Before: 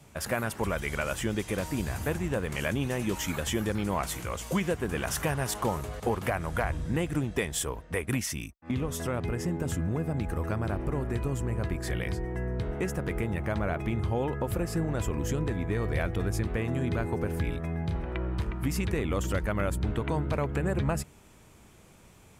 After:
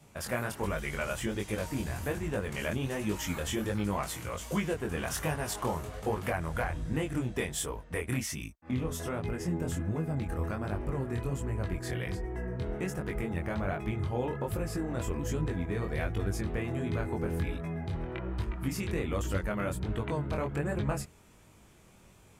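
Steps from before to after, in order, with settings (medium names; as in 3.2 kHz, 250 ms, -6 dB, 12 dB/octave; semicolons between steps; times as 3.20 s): chorus 1.3 Hz, delay 19 ms, depth 5.5 ms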